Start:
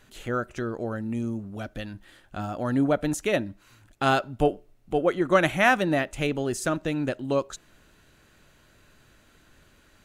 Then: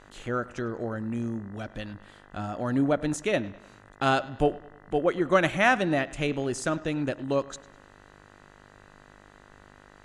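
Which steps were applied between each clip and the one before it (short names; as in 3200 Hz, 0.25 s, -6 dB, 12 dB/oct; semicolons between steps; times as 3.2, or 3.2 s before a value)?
analogue delay 0.101 s, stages 4096, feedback 47%, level -20 dB; buzz 50 Hz, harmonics 40, -53 dBFS -1 dB/oct; LPF 9500 Hz 24 dB/oct; gain -1.5 dB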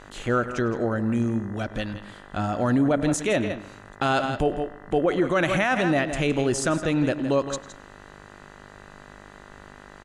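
echo 0.165 s -13 dB; limiter -20 dBFS, peak gain reduction 11.5 dB; gain +7 dB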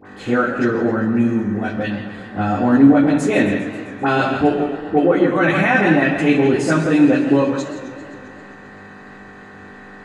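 dispersion highs, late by 55 ms, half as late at 1200 Hz; reverb RT60 0.45 s, pre-delay 3 ms, DRR -4 dB; warbling echo 0.132 s, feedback 71%, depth 176 cents, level -13.5 dB; gain -6 dB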